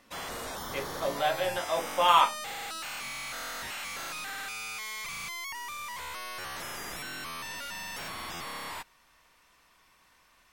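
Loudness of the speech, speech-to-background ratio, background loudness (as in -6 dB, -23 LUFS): -27.5 LUFS, 9.5 dB, -37.0 LUFS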